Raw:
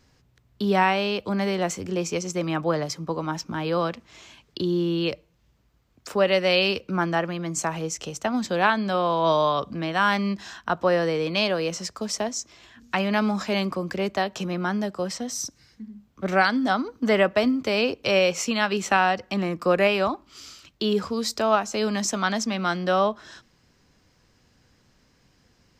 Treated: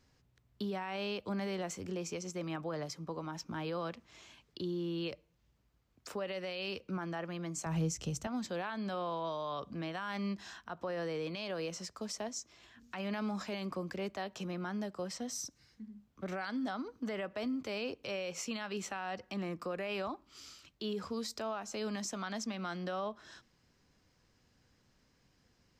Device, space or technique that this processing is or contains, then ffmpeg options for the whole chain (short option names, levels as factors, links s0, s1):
stacked limiters: -filter_complex "[0:a]alimiter=limit=0.224:level=0:latency=1:release=153,alimiter=limit=0.133:level=0:latency=1:release=46,alimiter=limit=0.0891:level=0:latency=1:release=226,asettb=1/sr,asplit=3[s0][s1][s2];[s0]atrim=end=7.664[s3];[s1]atrim=start=7.66:end=8.27,asetpts=PTS-STARTPTS,afade=t=in:d=0.004:c=qsin,afade=t=out:st=0.606:d=0.004:c=qsin,bass=f=250:g=15,treble=f=4000:g=4[s4];[s2]atrim=start=8.266[s5];[s3][s4]acrossfade=d=0.004:c1=hsin:c2=qsin[s6];[s6][s5]acrossfade=d=0.004:c1=qsin:c2=hsin,volume=0.355"